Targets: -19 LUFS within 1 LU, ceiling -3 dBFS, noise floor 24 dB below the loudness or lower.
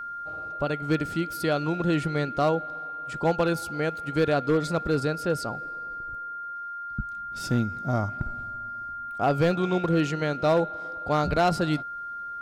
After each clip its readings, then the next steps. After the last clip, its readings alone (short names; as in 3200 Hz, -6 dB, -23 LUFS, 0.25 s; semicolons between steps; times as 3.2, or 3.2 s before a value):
clipped 0.6%; flat tops at -15.5 dBFS; steady tone 1400 Hz; tone level -33 dBFS; loudness -27.5 LUFS; peak -15.5 dBFS; loudness target -19.0 LUFS
-> clip repair -15.5 dBFS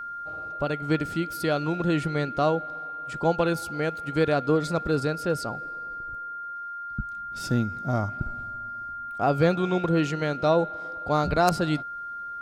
clipped 0.0%; steady tone 1400 Hz; tone level -33 dBFS
-> notch 1400 Hz, Q 30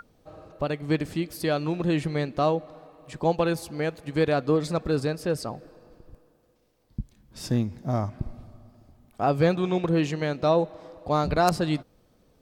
steady tone none; loudness -26.5 LUFS; peak -6.0 dBFS; loudness target -19.0 LUFS
-> gain +7.5 dB; limiter -3 dBFS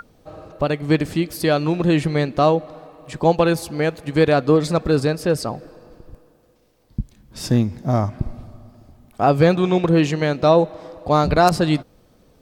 loudness -19.0 LUFS; peak -3.0 dBFS; noise floor -56 dBFS